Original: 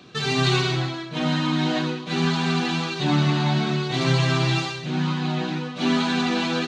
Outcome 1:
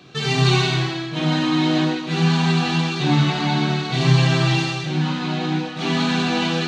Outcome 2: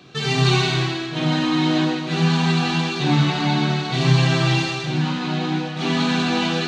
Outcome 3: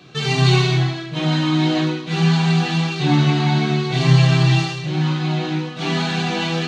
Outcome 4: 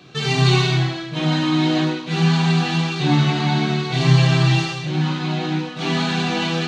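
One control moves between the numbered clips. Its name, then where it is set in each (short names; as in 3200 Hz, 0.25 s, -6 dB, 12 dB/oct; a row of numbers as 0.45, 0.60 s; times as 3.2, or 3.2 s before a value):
non-linear reverb, gate: 0.36, 0.53, 0.11, 0.18 s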